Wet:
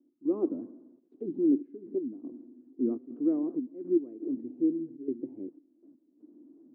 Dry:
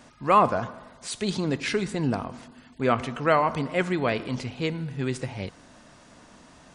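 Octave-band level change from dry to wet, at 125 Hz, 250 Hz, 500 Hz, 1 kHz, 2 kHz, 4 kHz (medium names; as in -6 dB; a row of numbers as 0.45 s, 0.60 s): -23.5 dB, +0.5 dB, -7.0 dB, under -30 dB, under -40 dB, under -40 dB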